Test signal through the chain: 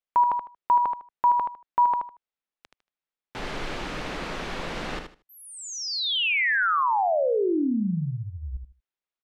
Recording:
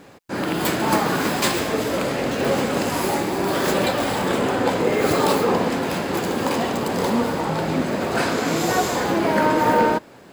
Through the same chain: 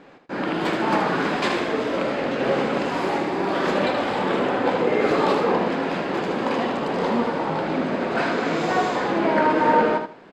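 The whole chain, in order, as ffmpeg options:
-af "lowpass=3300,equalizer=f=89:t=o:w=1:g=-14.5,aecho=1:1:77|154|231:0.447|0.0938|0.0197,volume=0.891"

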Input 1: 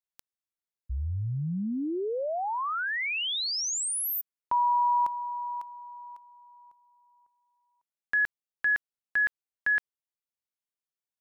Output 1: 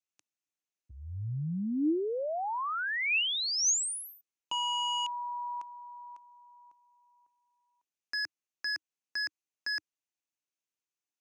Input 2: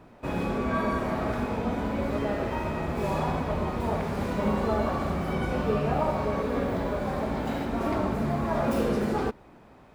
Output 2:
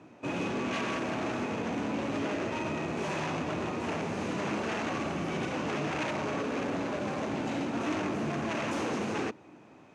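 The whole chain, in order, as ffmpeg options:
-af "aeval=exprs='0.0531*(abs(mod(val(0)/0.0531+3,4)-2)-1)':c=same,highpass=f=100:w=0.5412,highpass=f=100:w=1.3066,equalizer=f=310:t=q:w=4:g=8,equalizer=f=2600:t=q:w=4:g=7,equalizer=f=6300:t=q:w=4:g=9,lowpass=f=9300:w=0.5412,lowpass=f=9300:w=1.3066,volume=0.708"

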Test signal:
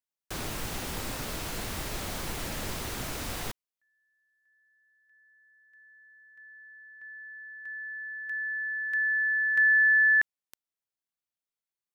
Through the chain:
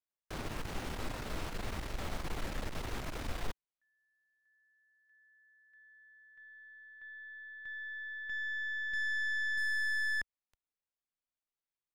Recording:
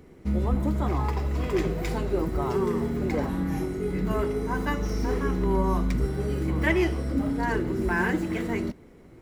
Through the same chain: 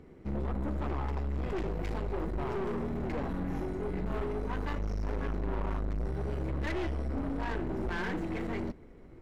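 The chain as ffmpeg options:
-af "asubboost=boost=2:cutoff=72,aeval=exprs='(tanh(35.5*val(0)+0.55)-tanh(0.55))/35.5':c=same,lowpass=f=2500:p=1"

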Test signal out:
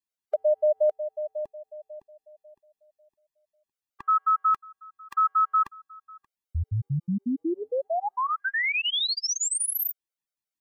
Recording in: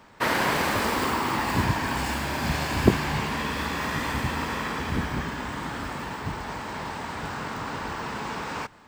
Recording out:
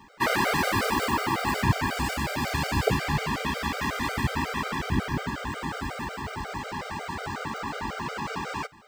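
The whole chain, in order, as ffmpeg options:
-af "afftfilt=real='re*gt(sin(2*PI*5.5*pts/sr)*(1-2*mod(floor(b*sr/1024/400),2)),0)':imag='im*gt(sin(2*PI*5.5*pts/sr)*(1-2*mod(floor(b*sr/1024/400),2)),0)':win_size=1024:overlap=0.75,volume=1.41"

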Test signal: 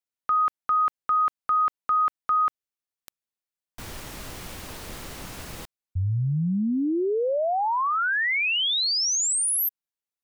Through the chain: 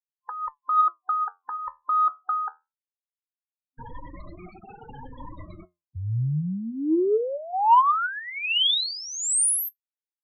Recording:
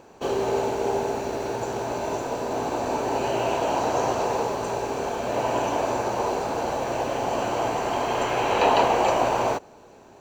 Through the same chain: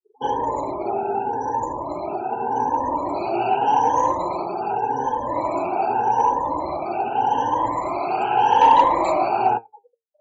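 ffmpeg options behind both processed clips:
-af "afftfilt=real='re*pow(10,16/40*sin(2*PI*(1.1*log(max(b,1)*sr/1024/100)/log(2)-(0.84)*(pts-256)/sr)))':imag='im*pow(10,16/40*sin(2*PI*(1.1*log(max(b,1)*sr/1024/100)/log(2)-(0.84)*(pts-256)/sr)))':win_size=1024:overlap=0.75,afftfilt=real='re*gte(hypot(re,im),0.0398)':imag='im*gte(hypot(re,im),0.0398)':win_size=1024:overlap=0.75,flanger=delay=5.5:depth=7.9:regen=68:speed=0.23:shape=sinusoidal,superequalizer=6b=1.58:9b=3.16,asoftclip=type=tanh:threshold=0.596"

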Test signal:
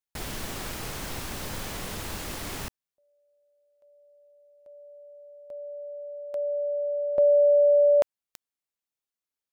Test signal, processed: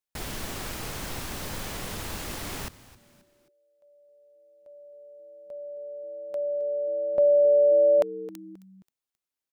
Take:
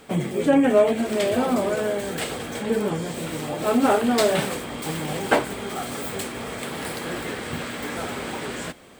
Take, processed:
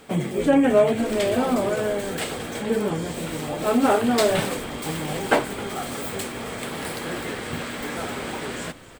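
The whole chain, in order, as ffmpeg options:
-filter_complex "[0:a]asplit=4[s0][s1][s2][s3];[s1]adelay=266,afreqshift=-130,volume=0.126[s4];[s2]adelay=532,afreqshift=-260,volume=0.0531[s5];[s3]adelay=798,afreqshift=-390,volume=0.0221[s6];[s0][s4][s5][s6]amix=inputs=4:normalize=0"

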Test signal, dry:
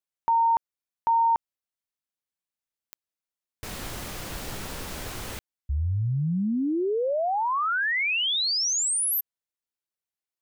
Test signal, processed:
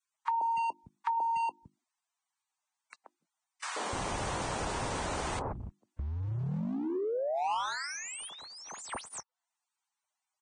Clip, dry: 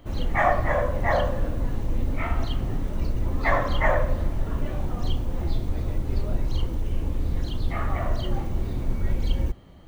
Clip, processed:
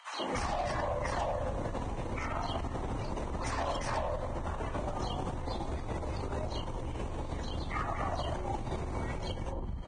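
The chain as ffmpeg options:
-filter_complex "[0:a]acrossover=split=200|1100[s0][s1][s2];[s1]adelay=130[s3];[s0]adelay=290[s4];[s4][s3][s2]amix=inputs=3:normalize=0,acrossover=split=200|830[s5][s6][s7];[s5]aeval=exprs='sgn(val(0))*max(abs(val(0))-0.002,0)':c=same[s8];[s6]bandreject=f=50:t=h:w=6,bandreject=f=100:t=h:w=6,bandreject=f=150:t=h:w=6,bandreject=f=200:t=h:w=6,bandreject=f=250:t=h:w=6,bandreject=f=300:t=h:w=6,bandreject=f=350:t=h:w=6[s9];[s7]aeval=exprs='0.0266*(abs(mod(val(0)/0.0266+3,4)-2)-1)':c=same[s10];[s8][s9][s10]amix=inputs=3:normalize=0,acompressor=threshold=0.0224:ratio=8:attack=5.4:release=26:knee=1:detection=rms,highpass=f=57:p=1,equalizer=f=930:w=1.3:g=11,acrossover=split=180|410|1700[s11][s12][s13][s14];[s11]acompressor=threshold=0.0112:ratio=4[s15];[s12]acompressor=threshold=0.00562:ratio=4[s16];[s13]acompressor=threshold=0.00891:ratio=4[s17];[s14]acompressor=threshold=0.00447:ratio=4[s18];[s15][s16][s17][s18]amix=inputs=4:normalize=0,volume=1.68" -ar 22050 -c:a libvorbis -b:a 16k

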